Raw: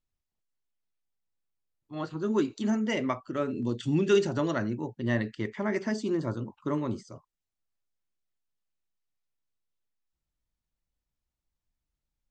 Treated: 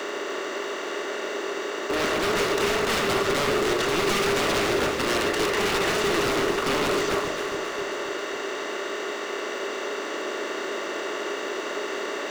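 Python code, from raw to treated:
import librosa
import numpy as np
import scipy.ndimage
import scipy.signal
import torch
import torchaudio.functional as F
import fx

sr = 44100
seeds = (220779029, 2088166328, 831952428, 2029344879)

p1 = fx.bin_compress(x, sr, power=0.2)
p2 = scipy.signal.sosfilt(scipy.signal.butter(4, 380.0, 'highpass', fs=sr, output='sos'), p1)
p3 = fx.quant_float(p2, sr, bits=2)
p4 = p2 + F.gain(torch.from_numpy(p3), -6.0).numpy()
p5 = 10.0 ** (-20.0 / 20.0) * (np.abs((p4 / 10.0 ** (-20.0 / 20.0) + 3.0) % 4.0 - 2.0) - 1.0)
y = p5 + fx.echo_alternate(p5, sr, ms=135, hz=900.0, feedback_pct=76, wet_db=-5.0, dry=0)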